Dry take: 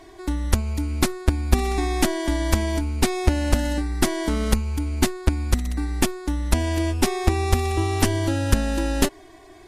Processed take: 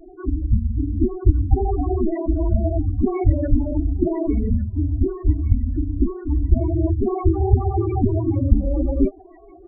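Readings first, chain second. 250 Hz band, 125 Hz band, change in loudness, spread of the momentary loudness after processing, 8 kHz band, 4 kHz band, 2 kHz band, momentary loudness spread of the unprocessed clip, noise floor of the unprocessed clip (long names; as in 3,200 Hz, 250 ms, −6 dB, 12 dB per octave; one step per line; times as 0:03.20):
+2.5 dB, +4.0 dB, +2.0 dB, 4 LU, below −40 dB, below −40 dB, below −20 dB, 4 LU, −47 dBFS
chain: random phases in long frames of 50 ms
spectral peaks only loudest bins 8
delay with a high-pass on its return 1,151 ms, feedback 45%, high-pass 2,600 Hz, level −5 dB
level +4 dB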